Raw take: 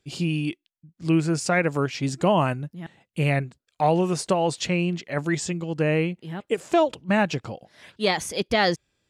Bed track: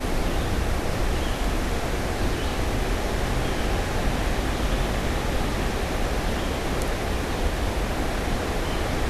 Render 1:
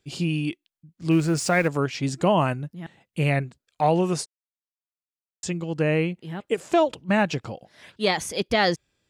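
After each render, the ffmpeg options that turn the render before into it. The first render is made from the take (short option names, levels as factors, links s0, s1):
-filter_complex "[0:a]asettb=1/sr,asplit=3[s0][s1][s2];[s0]atrim=end=1.114[s3];[s1]atrim=start=1.11:end=1.68,asetpts=PTS-STARTPTS,afade=t=in:d=0.004:c=qsin,afade=t=out:st=0.566:d=0.004:c=qsin,aeval=exprs='val(0)+0.5*0.0178*sgn(val(0))':c=same[s4];[s2]atrim=start=1.676[s5];[s3][s4]acrossfade=d=0.004:c1=hsin:c2=qsin[s6];[s6][s5]acrossfade=d=0.004:c1=qsin:c2=hsin,asplit=3[s7][s8][s9];[s7]atrim=end=4.26,asetpts=PTS-STARTPTS,afade=t=out:st=4.256:d=0.004:c=hsin[s10];[s8]atrim=start=4.26:end=5.43,asetpts=PTS-STARTPTS,volume=0[s11];[s9]atrim=start=5.43,asetpts=PTS-STARTPTS,afade=t=in:d=0.004:c=hsin[s12];[s10][s11][s12]concat=n=3:v=0:a=1"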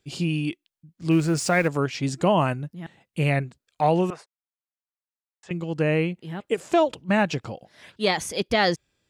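-filter_complex "[0:a]asettb=1/sr,asplit=3[s0][s1][s2];[s0]atrim=end=4.104[s3];[s1]atrim=start=4.1:end=5.51,asetpts=PTS-STARTPTS,afade=t=in:d=0.004:c=qsin,afade=t=out:st=1.406:d=0.004:c=qsin,acrossover=split=570 2300:gain=0.0794 1 0.0708[s4][s5][s6];[s4][s5][s6]amix=inputs=3:normalize=0[s7];[s2]atrim=start=5.506[s8];[s3][s7]acrossfade=d=0.004:c1=hsin:c2=qsin[s9];[s9][s8]acrossfade=d=0.004:c1=qsin:c2=hsin"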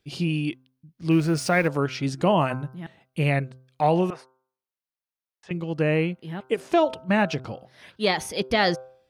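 -af "equalizer=f=7400:w=5:g=-13,bandreject=f=129.7:t=h:w=4,bandreject=f=259.4:t=h:w=4,bandreject=f=389.1:t=h:w=4,bandreject=f=518.8:t=h:w=4,bandreject=f=648.5:t=h:w=4,bandreject=f=778.2:t=h:w=4,bandreject=f=907.9:t=h:w=4,bandreject=f=1037.6:t=h:w=4,bandreject=f=1167.3:t=h:w=4,bandreject=f=1297:t=h:w=4,bandreject=f=1426.7:t=h:w=4,bandreject=f=1556.4:t=h:w=4"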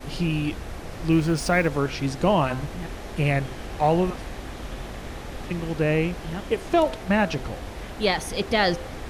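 -filter_complex "[1:a]volume=0.299[s0];[0:a][s0]amix=inputs=2:normalize=0"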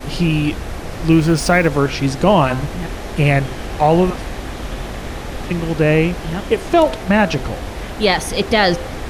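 -af "volume=2.66,alimiter=limit=0.708:level=0:latency=1"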